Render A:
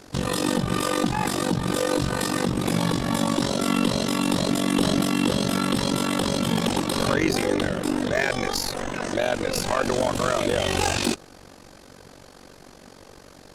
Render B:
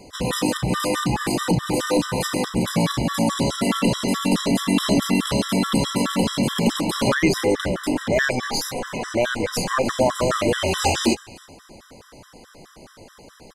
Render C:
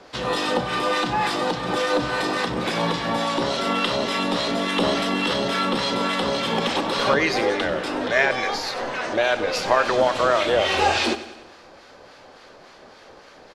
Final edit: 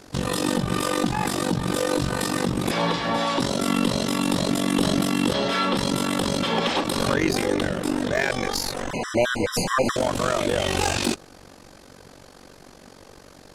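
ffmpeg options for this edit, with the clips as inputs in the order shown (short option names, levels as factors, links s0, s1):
-filter_complex "[2:a]asplit=3[s0][s1][s2];[0:a]asplit=5[s3][s4][s5][s6][s7];[s3]atrim=end=2.712[s8];[s0]atrim=start=2.708:end=3.402[s9];[s4]atrim=start=3.398:end=5.342[s10];[s1]atrim=start=5.338:end=5.772[s11];[s5]atrim=start=5.768:end=6.432[s12];[s2]atrim=start=6.428:end=6.842[s13];[s6]atrim=start=6.838:end=8.912[s14];[1:a]atrim=start=8.908:end=9.962[s15];[s7]atrim=start=9.958[s16];[s8][s9]acrossfade=d=0.004:c1=hsin:c2=hsin[s17];[s17][s10]acrossfade=d=0.004:c1=hsin:c2=hsin[s18];[s18][s11]acrossfade=d=0.004:c1=hsin:c2=hsin[s19];[s19][s12]acrossfade=d=0.004:c1=hsin:c2=hsin[s20];[s20][s13]acrossfade=d=0.004:c1=hsin:c2=hsin[s21];[s21][s14]acrossfade=d=0.004:c1=hsin:c2=hsin[s22];[s22][s15]acrossfade=d=0.004:c1=hsin:c2=hsin[s23];[s23][s16]acrossfade=d=0.004:c1=hsin:c2=hsin"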